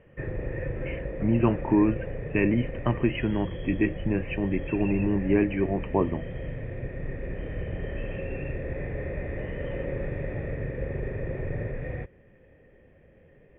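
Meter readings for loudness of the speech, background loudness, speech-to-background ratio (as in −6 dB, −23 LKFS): −26.5 LKFS, −35.0 LKFS, 8.5 dB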